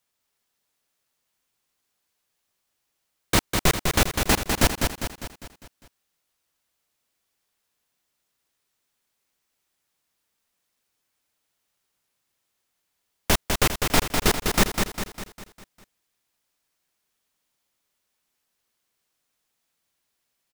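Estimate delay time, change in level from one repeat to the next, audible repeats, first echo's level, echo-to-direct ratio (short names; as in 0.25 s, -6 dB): 0.201 s, -6.0 dB, 5, -5.0 dB, -4.0 dB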